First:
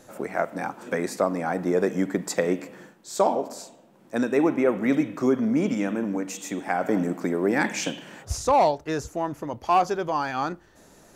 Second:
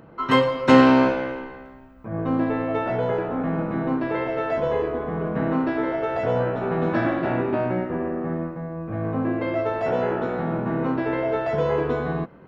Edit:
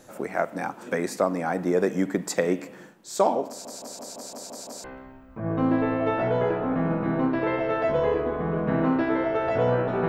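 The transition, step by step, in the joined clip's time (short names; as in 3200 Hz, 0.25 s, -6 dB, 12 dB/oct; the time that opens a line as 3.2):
first
3.48 stutter in place 0.17 s, 8 plays
4.84 switch to second from 1.52 s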